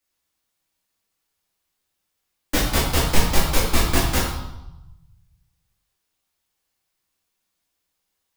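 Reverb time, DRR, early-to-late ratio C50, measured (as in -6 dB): 0.95 s, -6.5 dB, 3.0 dB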